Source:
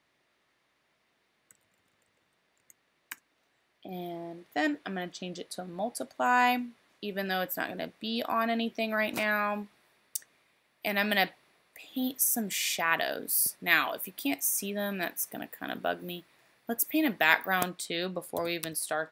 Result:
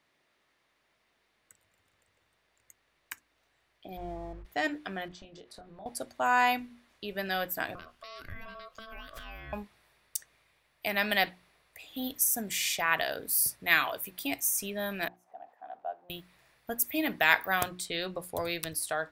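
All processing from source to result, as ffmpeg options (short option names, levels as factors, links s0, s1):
-filter_complex "[0:a]asettb=1/sr,asplit=3[s0][s1][s2];[s0]atrim=end=3.974[s3];[s1]atrim=start=3.97:end=4.45,asetpts=PTS-STARTPTS,afade=t=in:d=0.004:c=qsin,afade=t=out:st=0.476:d=0.004:c=qsin,lowpass=f=1300:t=q:w=1.5,aeval=exprs='sgn(val(0))*max(abs(val(0))-0.00126,0)':c=same,aeval=exprs='val(0)+0.00141*(sin(2*PI*50*n/s)+sin(2*PI*2*50*n/s)/2+sin(2*PI*3*50*n/s)/3+sin(2*PI*4*50*n/s)/4+sin(2*PI*5*50*n/s)/5)':c=same[s4];[s2]atrim=start=4.446[s5];[s3][s4]acrossfade=d=0.004:c1=hsin:c2=qsin[s6];[s6][s5]acrossfade=d=0.004:c1=qsin:c2=hsin,asettb=1/sr,asplit=3[s7][s8][s9];[s7]atrim=end=5.084[s10];[s8]atrim=start=5.08:end=5.86,asetpts=PTS-STARTPTS,afade=t=in:d=0.004:c=qsin,afade=t=out:st=0.776:d=0.004:c=qsin,lowpass=f=2100:p=1,acompressor=threshold=0.00562:ratio=5:attack=3.2:release=140:knee=1:detection=peak,asplit=2[s11][s12];[s12]adelay=25,volume=0.531[s13];[s11][s13]amix=inputs=2:normalize=0,atrim=end_sample=34398[s14];[s9]atrim=start=5.856[s15];[s10][s14]acrossfade=d=0.004:c1=hsin:c2=qsin[s16];[s16][s15]acrossfade=d=0.004:c1=qsin:c2=hsin,asettb=1/sr,asplit=3[s17][s18][s19];[s17]atrim=end=7.754[s20];[s18]atrim=start=7.75:end=9.53,asetpts=PTS-STARTPTS,afade=t=in:d=0.004:c=qsin,afade=t=out:st=1.776:d=0.004:c=qsin,aeval=exprs='val(0)*sin(2*PI*890*n/s)':c=same,acompressor=threshold=0.00794:ratio=6:attack=3.2:release=140:knee=1:detection=peak[s21];[s19]atrim=start=9.526[s22];[s20][s21]acrossfade=d=0.004:c1=hsin:c2=qsin[s23];[s23][s22]acrossfade=d=0.004:c1=qsin:c2=hsin,asettb=1/sr,asplit=3[s24][s25][s26];[s24]atrim=end=15.084[s27];[s25]atrim=start=15.08:end=16.1,asetpts=PTS-STARTPTS,afade=t=in:d=0.004:c=qsin,afade=t=out:st=1.016:d=0.004:c=qsin,aeval=exprs='val(0)+0.5*0.00631*sgn(val(0))':c=same,bandpass=f=750:t=q:w=7.3[s28];[s26]atrim=start=16.096[s29];[s27][s28]acrossfade=d=0.004:c1=hsin:c2=qsin[s30];[s30][s29]acrossfade=d=0.004:c1=qsin:c2=hsin,bandreject=f=60:t=h:w=6,bandreject=f=120:t=h:w=6,bandreject=f=180:t=h:w=6,bandreject=f=240:t=h:w=6,bandreject=f=300:t=h:w=6,bandreject=f=360:t=h:w=6,asubboost=boost=9:cutoff=73"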